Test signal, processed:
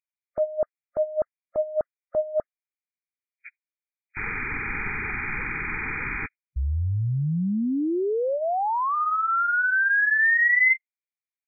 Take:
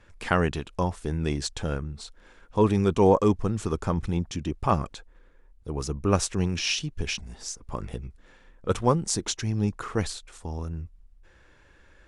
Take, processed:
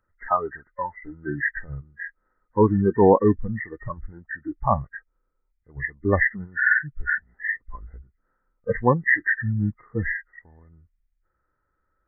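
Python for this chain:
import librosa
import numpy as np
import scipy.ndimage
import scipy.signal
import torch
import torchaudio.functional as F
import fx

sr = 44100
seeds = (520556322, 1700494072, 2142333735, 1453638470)

y = fx.freq_compress(x, sr, knee_hz=1200.0, ratio=4.0)
y = fx.noise_reduce_blind(y, sr, reduce_db=23)
y = y * 10.0 ** (4.0 / 20.0)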